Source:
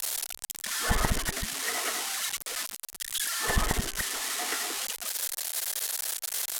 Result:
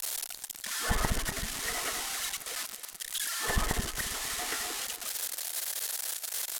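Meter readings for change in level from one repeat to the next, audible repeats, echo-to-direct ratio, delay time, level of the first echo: −5.5 dB, 4, −12.5 dB, 271 ms, −14.0 dB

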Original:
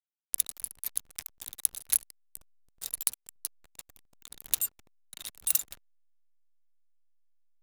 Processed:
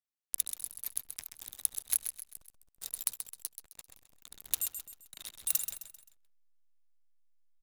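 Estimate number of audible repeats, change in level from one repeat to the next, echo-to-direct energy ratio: 4, −8.0 dB, −7.5 dB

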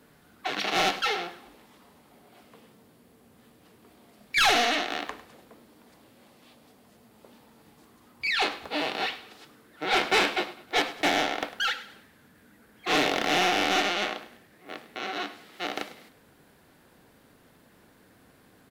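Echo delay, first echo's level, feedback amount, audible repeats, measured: 102 ms, −16.5 dB, 38%, 3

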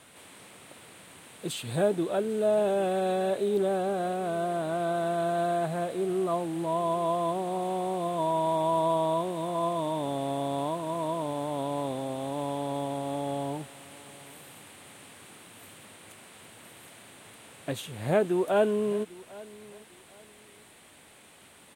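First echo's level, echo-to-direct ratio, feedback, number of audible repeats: −21.0 dB, −20.5 dB, 28%, 2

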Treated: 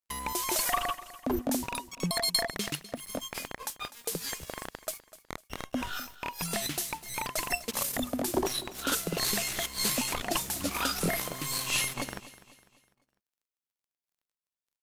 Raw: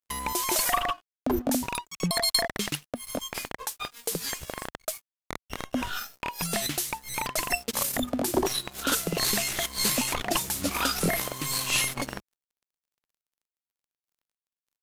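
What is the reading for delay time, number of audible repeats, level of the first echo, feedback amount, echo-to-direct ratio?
250 ms, 3, −17.0 dB, 42%, −16.0 dB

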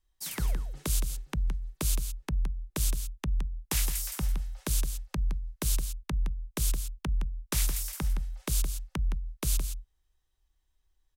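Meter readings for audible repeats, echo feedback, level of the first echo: 1, repeats not evenly spaced, −8.5 dB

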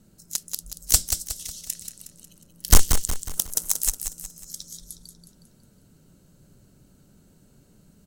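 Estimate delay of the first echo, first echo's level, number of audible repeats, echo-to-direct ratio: 182 ms, −7.5 dB, 4, −6.5 dB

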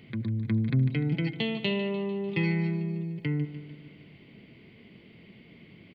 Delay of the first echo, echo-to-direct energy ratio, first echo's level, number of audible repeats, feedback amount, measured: 149 ms, −11.0 dB, −13.0 dB, 5, 59%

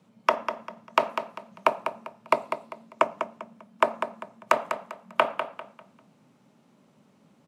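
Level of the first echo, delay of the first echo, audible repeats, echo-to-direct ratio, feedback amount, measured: −8.5 dB, 198 ms, 3, −8.0 dB, 30%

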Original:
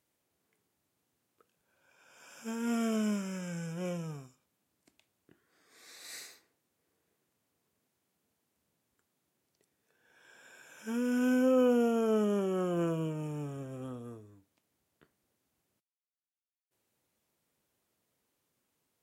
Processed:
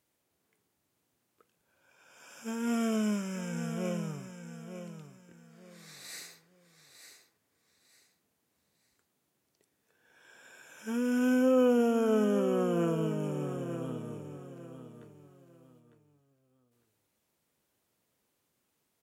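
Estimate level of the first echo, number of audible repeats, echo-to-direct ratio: −9.5 dB, 3, −9.0 dB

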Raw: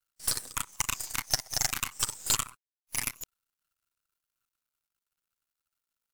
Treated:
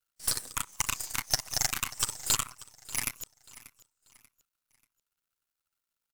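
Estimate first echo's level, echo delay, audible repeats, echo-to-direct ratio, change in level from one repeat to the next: −19.0 dB, 587 ms, 2, −18.5 dB, −9.5 dB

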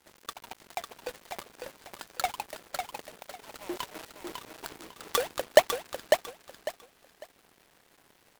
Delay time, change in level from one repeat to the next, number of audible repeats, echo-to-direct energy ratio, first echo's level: 550 ms, −12.5 dB, 3, −4.5 dB, −5.0 dB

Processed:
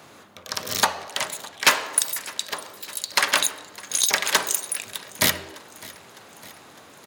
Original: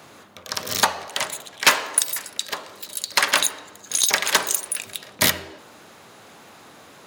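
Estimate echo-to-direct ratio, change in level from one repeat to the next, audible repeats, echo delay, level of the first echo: −19.0 dB, −4.5 dB, 4, 607 ms, −21.0 dB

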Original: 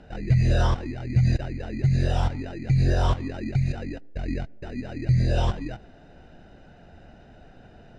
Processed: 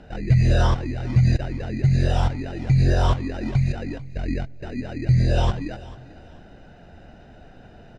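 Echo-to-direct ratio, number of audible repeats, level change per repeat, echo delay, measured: −18.5 dB, 2, −10.5 dB, 442 ms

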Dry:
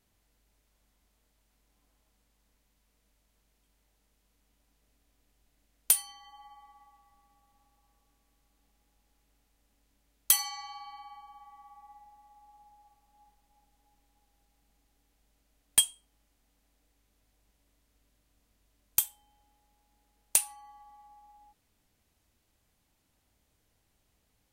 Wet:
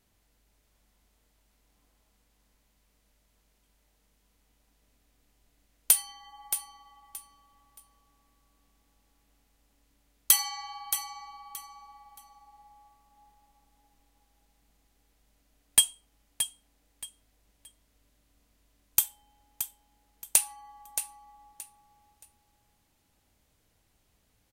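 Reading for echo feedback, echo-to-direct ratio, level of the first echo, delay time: 25%, −9.0 dB, −9.5 dB, 624 ms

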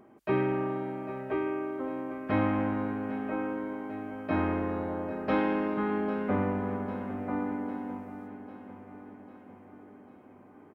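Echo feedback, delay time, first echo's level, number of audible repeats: 57%, 799 ms, −13.0 dB, 5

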